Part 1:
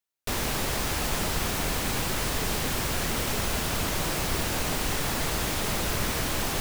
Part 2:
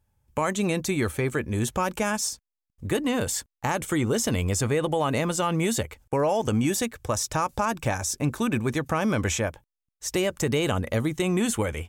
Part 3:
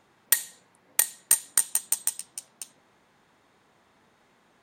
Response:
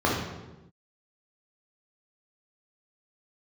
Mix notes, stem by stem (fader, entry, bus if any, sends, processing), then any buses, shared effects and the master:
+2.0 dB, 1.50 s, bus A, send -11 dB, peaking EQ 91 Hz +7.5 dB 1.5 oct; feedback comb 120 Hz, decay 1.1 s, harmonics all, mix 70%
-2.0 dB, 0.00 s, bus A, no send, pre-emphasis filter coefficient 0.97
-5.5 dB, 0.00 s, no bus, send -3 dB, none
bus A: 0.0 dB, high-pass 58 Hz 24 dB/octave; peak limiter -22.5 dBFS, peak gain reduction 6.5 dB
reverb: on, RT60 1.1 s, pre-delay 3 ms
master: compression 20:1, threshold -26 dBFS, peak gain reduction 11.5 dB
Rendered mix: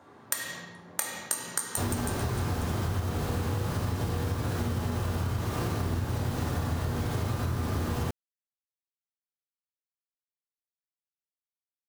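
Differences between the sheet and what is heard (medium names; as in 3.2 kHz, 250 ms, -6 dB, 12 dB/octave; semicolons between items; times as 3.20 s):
stem 1 +2.0 dB -> +8.5 dB; stem 2: muted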